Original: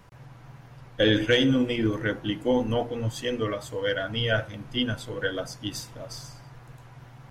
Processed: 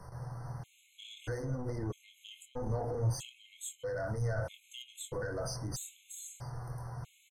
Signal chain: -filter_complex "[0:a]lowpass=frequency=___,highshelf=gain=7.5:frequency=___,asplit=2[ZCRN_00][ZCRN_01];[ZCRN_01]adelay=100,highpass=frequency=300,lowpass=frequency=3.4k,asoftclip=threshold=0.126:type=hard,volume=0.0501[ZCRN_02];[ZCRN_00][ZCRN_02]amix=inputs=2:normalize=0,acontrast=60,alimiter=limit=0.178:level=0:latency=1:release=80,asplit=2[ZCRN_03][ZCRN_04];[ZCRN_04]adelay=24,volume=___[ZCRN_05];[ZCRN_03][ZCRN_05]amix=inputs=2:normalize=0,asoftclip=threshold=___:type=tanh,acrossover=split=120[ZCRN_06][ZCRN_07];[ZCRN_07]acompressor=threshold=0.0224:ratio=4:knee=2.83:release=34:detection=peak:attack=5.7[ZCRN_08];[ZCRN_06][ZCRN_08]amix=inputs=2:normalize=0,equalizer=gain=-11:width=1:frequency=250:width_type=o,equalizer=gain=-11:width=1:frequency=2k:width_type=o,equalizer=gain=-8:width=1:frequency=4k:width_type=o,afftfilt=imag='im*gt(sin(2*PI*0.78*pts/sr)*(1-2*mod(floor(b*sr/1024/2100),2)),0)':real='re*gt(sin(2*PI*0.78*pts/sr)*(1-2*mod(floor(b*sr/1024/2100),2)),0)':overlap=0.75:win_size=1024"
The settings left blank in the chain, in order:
10k, 7.2k, 0.473, 0.112